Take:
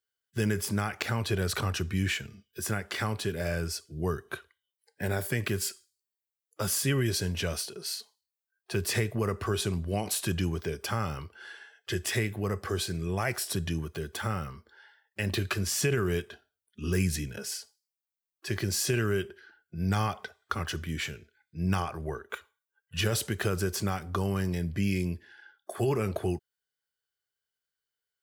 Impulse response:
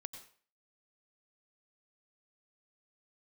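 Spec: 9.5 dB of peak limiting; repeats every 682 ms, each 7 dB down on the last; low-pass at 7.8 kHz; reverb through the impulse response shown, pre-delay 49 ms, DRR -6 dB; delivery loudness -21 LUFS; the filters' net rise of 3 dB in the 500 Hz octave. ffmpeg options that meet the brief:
-filter_complex "[0:a]lowpass=7800,equalizer=f=500:t=o:g=4,alimiter=limit=0.0841:level=0:latency=1,aecho=1:1:682|1364|2046|2728|3410:0.447|0.201|0.0905|0.0407|0.0183,asplit=2[s0][s1];[1:a]atrim=start_sample=2205,adelay=49[s2];[s1][s2]afir=irnorm=-1:irlink=0,volume=2.99[s3];[s0][s3]amix=inputs=2:normalize=0,volume=1.78"

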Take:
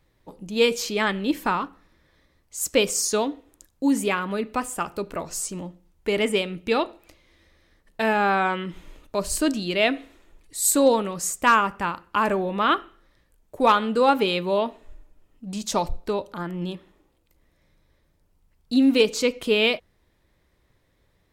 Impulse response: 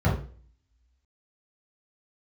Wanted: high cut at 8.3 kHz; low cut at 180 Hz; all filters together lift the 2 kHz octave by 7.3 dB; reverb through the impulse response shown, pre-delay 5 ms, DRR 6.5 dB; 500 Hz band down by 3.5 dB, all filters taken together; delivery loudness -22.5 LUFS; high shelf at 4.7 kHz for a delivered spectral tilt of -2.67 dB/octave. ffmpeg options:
-filter_complex "[0:a]highpass=180,lowpass=8300,equalizer=f=500:t=o:g=-4.5,equalizer=f=2000:t=o:g=8.5,highshelf=f=4700:g=8,asplit=2[s0][s1];[1:a]atrim=start_sample=2205,adelay=5[s2];[s1][s2]afir=irnorm=-1:irlink=0,volume=0.106[s3];[s0][s3]amix=inputs=2:normalize=0,volume=0.75"

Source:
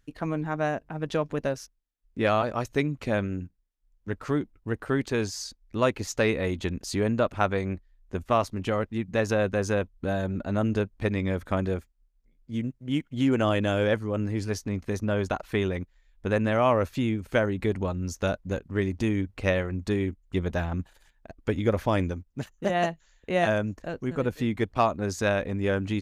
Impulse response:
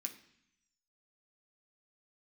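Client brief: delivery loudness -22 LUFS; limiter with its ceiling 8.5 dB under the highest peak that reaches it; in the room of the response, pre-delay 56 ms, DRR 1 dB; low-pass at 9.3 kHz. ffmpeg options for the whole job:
-filter_complex "[0:a]lowpass=9300,alimiter=limit=0.133:level=0:latency=1,asplit=2[s0][s1];[1:a]atrim=start_sample=2205,adelay=56[s2];[s1][s2]afir=irnorm=-1:irlink=0,volume=1.33[s3];[s0][s3]amix=inputs=2:normalize=0,volume=1.88"

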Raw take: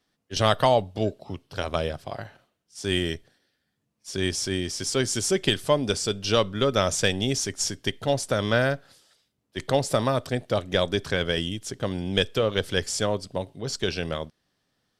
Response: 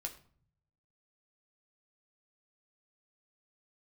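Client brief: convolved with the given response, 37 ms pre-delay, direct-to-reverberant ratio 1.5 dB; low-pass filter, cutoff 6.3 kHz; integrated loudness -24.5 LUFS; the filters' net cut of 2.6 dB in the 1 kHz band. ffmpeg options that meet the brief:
-filter_complex "[0:a]lowpass=6300,equalizer=f=1000:t=o:g=-3.5,asplit=2[s0][s1];[1:a]atrim=start_sample=2205,adelay=37[s2];[s1][s2]afir=irnorm=-1:irlink=0,volume=1[s3];[s0][s3]amix=inputs=2:normalize=0,volume=0.944"

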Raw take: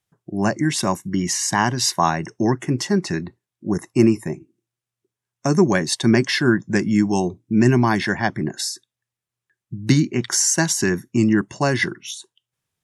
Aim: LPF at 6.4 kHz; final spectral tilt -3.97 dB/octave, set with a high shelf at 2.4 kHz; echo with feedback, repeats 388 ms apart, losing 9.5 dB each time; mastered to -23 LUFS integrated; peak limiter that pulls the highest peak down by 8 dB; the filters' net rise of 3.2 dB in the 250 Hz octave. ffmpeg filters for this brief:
-af "lowpass=6400,equalizer=f=250:t=o:g=4,highshelf=f=2400:g=7,alimiter=limit=0.376:level=0:latency=1,aecho=1:1:388|776|1164|1552:0.335|0.111|0.0365|0.012,volume=0.668"

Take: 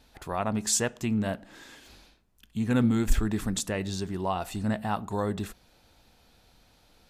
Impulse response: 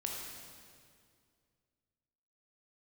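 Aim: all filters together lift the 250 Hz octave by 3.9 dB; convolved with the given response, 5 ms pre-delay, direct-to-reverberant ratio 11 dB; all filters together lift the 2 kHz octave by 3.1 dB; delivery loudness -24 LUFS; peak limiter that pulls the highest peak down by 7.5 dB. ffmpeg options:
-filter_complex "[0:a]equalizer=f=250:t=o:g=4.5,equalizer=f=2000:t=o:g=4,alimiter=limit=0.126:level=0:latency=1,asplit=2[s0][s1];[1:a]atrim=start_sample=2205,adelay=5[s2];[s1][s2]afir=irnorm=-1:irlink=0,volume=0.237[s3];[s0][s3]amix=inputs=2:normalize=0,volume=1.58"

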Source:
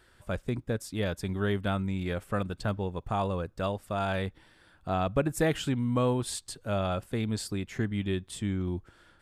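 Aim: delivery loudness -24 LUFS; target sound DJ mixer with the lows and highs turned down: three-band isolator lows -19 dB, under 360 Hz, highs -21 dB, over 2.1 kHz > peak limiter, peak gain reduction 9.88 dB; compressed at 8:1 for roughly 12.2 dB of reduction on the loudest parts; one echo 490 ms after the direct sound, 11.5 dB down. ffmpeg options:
-filter_complex "[0:a]acompressor=threshold=0.02:ratio=8,acrossover=split=360 2100:gain=0.112 1 0.0891[s0][s1][s2];[s0][s1][s2]amix=inputs=3:normalize=0,aecho=1:1:490:0.266,volume=15,alimiter=limit=0.266:level=0:latency=1"

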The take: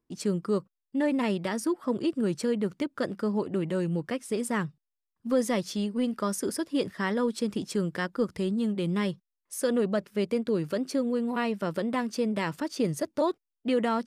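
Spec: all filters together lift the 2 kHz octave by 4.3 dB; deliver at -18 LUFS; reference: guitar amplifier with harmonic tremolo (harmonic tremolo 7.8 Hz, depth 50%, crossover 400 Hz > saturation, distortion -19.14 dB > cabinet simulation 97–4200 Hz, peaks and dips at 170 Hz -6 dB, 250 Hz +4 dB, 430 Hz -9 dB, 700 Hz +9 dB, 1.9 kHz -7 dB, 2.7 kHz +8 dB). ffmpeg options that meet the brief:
-filter_complex "[0:a]equalizer=f=2000:t=o:g=7.5,acrossover=split=400[s0][s1];[s0]aeval=exprs='val(0)*(1-0.5/2+0.5/2*cos(2*PI*7.8*n/s))':c=same[s2];[s1]aeval=exprs='val(0)*(1-0.5/2-0.5/2*cos(2*PI*7.8*n/s))':c=same[s3];[s2][s3]amix=inputs=2:normalize=0,asoftclip=threshold=0.0944,highpass=97,equalizer=f=170:t=q:w=4:g=-6,equalizer=f=250:t=q:w=4:g=4,equalizer=f=430:t=q:w=4:g=-9,equalizer=f=700:t=q:w=4:g=9,equalizer=f=1900:t=q:w=4:g=-7,equalizer=f=2700:t=q:w=4:g=8,lowpass=f=4200:w=0.5412,lowpass=f=4200:w=1.3066,volume=5.31"

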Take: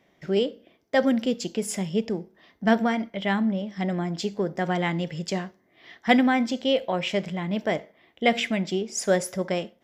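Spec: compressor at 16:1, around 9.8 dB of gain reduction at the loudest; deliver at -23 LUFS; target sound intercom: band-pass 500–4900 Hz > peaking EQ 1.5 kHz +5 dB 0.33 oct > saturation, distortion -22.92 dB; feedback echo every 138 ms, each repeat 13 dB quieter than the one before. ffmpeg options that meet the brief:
-af "acompressor=threshold=0.0708:ratio=16,highpass=500,lowpass=4900,equalizer=f=1500:t=o:w=0.33:g=5,aecho=1:1:138|276|414:0.224|0.0493|0.0108,asoftclip=threshold=0.133,volume=3.76"

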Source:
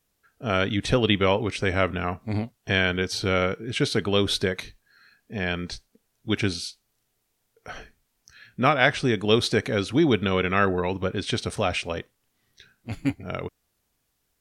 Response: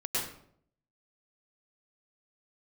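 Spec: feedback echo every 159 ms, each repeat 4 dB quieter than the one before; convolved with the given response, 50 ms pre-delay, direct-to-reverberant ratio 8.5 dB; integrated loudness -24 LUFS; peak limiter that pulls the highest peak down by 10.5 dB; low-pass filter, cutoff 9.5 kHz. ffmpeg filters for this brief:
-filter_complex "[0:a]lowpass=9500,alimiter=limit=0.2:level=0:latency=1,aecho=1:1:159|318|477|636|795|954|1113|1272|1431:0.631|0.398|0.25|0.158|0.0994|0.0626|0.0394|0.0249|0.0157,asplit=2[s0][s1];[1:a]atrim=start_sample=2205,adelay=50[s2];[s1][s2]afir=irnorm=-1:irlink=0,volume=0.178[s3];[s0][s3]amix=inputs=2:normalize=0,volume=1.06"

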